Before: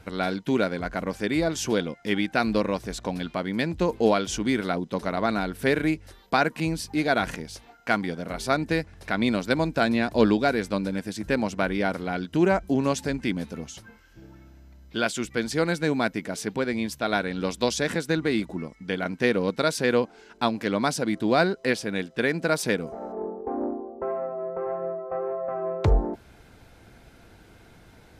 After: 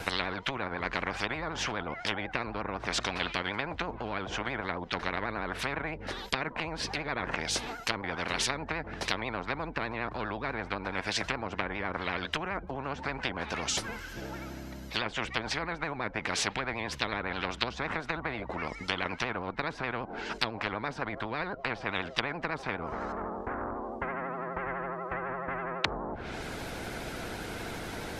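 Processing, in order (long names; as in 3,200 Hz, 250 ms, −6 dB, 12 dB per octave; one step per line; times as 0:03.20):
treble cut that deepens with the level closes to 680 Hz, closed at −21.5 dBFS
pitch vibrato 12 Hz 83 cents
every bin compressed towards the loudest bin 10 to 1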